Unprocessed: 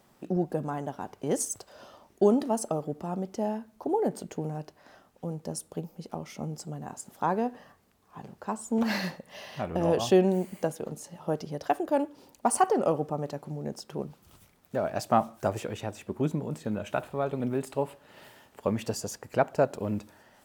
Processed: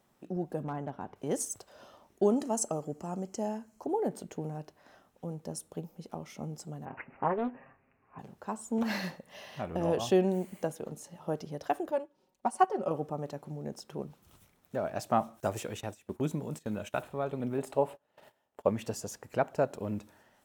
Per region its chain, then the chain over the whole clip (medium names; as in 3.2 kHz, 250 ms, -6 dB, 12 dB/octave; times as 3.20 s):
0.63–1.16 s: tone controls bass +3 dB, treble -14 dB + overload inside the chain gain 24 dB
2.36–3.86 s: Butterworth band-stop 3.6 kHz, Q 7.3 + peaking EQ 7.1 kHz +12 dB 0.7 oct
6.85–8.19 s: comb 7.5 ms, depth 64% + careless resampling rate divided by 8×, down none, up filtered + loudspeaker Doppler distortion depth 0.34 ms
11.91–12.91 s: treble shelf 9.1 kHz -10.5 dB + comb 5.4 ms, depth 66% + upward expansion, over -41 dBFS
15.40–17.03 s: gate -43 dBFS, range -15 dB + treble shelf 3.4 kHz +8 dB
17.58–18.69 s: gate -51 dBFS, range -21 dB + peaking EQ 660 Hz +8 dB 1.3 oct
whole clip: band-stop 4.7 kHz, Q 15; level rider gain up to 4 dB; trim -8 dB